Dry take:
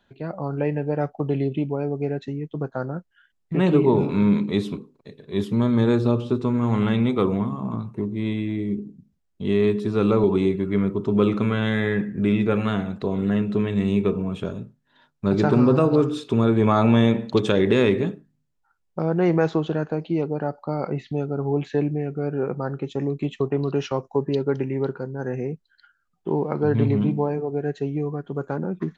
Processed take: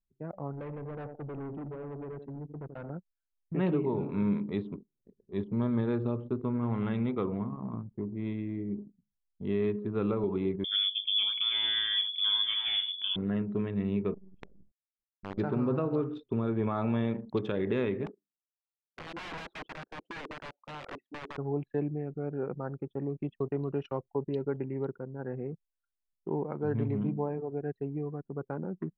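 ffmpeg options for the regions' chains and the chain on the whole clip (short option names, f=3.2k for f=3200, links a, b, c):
-filter_complex "[0:a]asettb=1/sr,asplit=3[a][b][c];[a]atrim=end=0.524[d];[b]atrim=start=0.52:end=2.9,asetpts=PTS-STARTPTS,afade=t=in:d=0.004:c=qsin,afade=t=out:st=2.376:d=0.004:c=qsin,aecho=1:1:83|166|249|332|415:0.316|0.149|0.0699|0.0328|0.0154,atrim=end_sample=104958,asoftclip=type=hard:threshold=-28dB[e];[c]atrim=start=2.896[f];[d][e]acrossfade=d=0.004:c1=hsin:c2=qsin[g];[g][f]acrossfade=d=0.004:c1=qsin:c2=hsin,asettb=1/sr,asplit=3[h][i][j];[h]atrim=end=10.644[k];[i]atrim=start=10.64:end=13.16,asetpts=PTS-STARTPTS,afade=t=in:d=0.004:c=qsin,afade=t=out:st=2.516:d=0.004:c=qsin,lowshelf=f=290:g=11,aecho=1:1:781:0.266,atrim=end_sample=111132,lowpass=f=3.1k:t=q:w=0.5098,lowpass=f=3.1k:t=q:w=0.6013,lowpass=f=3.1k:t=q:w=0.9,lowpass=f=3.1k:t=q:w=2.563,afreqshift=-3600[l];[j]atrim=start=13.156[m];[k][l]acrossfade=d=0.004:c1=hsin:c2=qsin[n];[n][m]acrossfade=d=0.004:c1=qsin:c2=hsin,asettb=1/sr,asplit=3[o][p][q];[o]atrim=end=14.144[r];[p]atrim=start=14.14:end=15.38,asetpts=PTS-STARTPTS,afade=t=in:d=0.004:c=qsin,afade=t=out:st=1.236:d=0.004:c=qsin,acompressor=threshold=-33dB:ratio=2.5:attack=3.2:release=140:knee=1:detection=peak,acrusher=bits=5:dc=4:mix=0:aa=0.000001[s];[q]atrim=start=15.376[t];[r][s]acrossfade=d=0.004:c1=hsin:c2=qsin[u];[u][t]acrossfade=d=0.004:c1=qsin:c2=hsin,asettb=1/sr,asplit=3[v][w][x];[v]atrim=end=18.064[y];[w]atrim=start=18.06:end=21.38,asetpts=PTS-STARTPTS,afade=t=in:d=0.004:c=qsin,afade=t=out:st=3.316:d=0.004:c=qsin,highpass=f=270:w=0.5412,highpass=f=270:w=1.3066,aeval=exprs='(mod(17.8*val(0)+1,2)-1)/17.8':c=same[z];[x]atrim=start=21.376[aa];[y][z]acrossfade=d=0.004:c1=hsin:c2=qsin[ab];[ab][aa]acrossfade=d=0.004:c1=qsin:c2=hsin,anlmdn=25.1,lowpass=2.7k,alimiter=limit=-11dB:level=0:latency=1:release=300,volume=-9dB"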